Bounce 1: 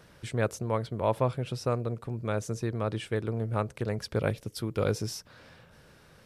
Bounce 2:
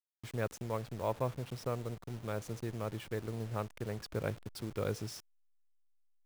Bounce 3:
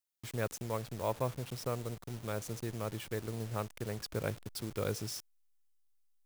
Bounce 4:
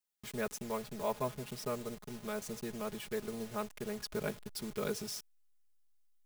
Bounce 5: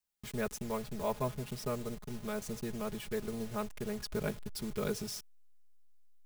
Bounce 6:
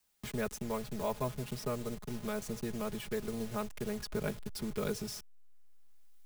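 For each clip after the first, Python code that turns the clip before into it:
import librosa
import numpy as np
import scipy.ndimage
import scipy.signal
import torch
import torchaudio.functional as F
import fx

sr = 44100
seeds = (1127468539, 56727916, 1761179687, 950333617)

y1 = fx.delta_hold(x, sr, step_db=-38.5)
y1 = F.gain(torch.from_numpy(y1), -7.5).numpy()
y2 = fx.high_shelf(y1, sr, hz=4200.0, db=8.0)
y3 = y2 + 0.97 * np.pad(y2, (int(4.8 * sr / 1000.0), 0))[:len(y2)]
y3 = F.gain(torch.from_numpy(y3), -3.0).numpy()
y4 = fx.low_shelf(y3, sr, hz=130.0, db=11.0)
y5 = fx.band_squash(y4, sr, depth_pct=40)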